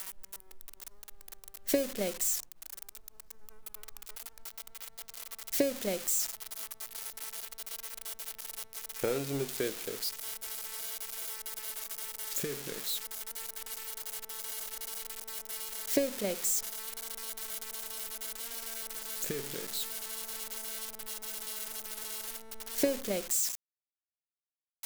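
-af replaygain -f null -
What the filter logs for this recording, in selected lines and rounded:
track_gain = +17.6 dB
track_peak = 0.120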